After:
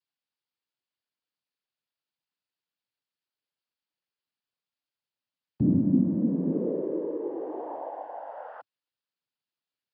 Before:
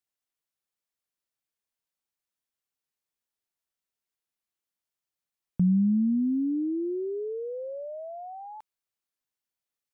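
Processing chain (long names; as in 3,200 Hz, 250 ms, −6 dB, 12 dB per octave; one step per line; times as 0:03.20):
cochlear-implant simulation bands 8
downsampling to 11,025 Hz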